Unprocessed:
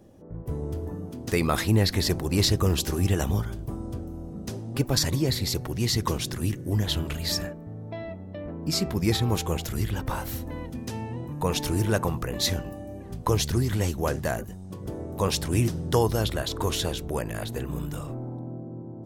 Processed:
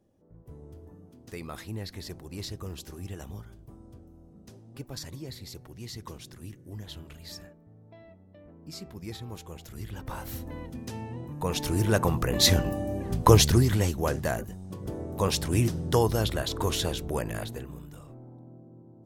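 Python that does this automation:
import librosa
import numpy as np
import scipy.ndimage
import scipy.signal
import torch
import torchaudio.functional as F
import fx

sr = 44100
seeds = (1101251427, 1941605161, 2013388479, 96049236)

y = fx.gain(x, sr, db=fx.line((9.54, -15.5), (10.36, -4.0), (11.43, -4.0), (12.67, 7.0), (13.34, 7.0), (13.93, -1.0), (17.37, -1.0), (17.82, -12.5)))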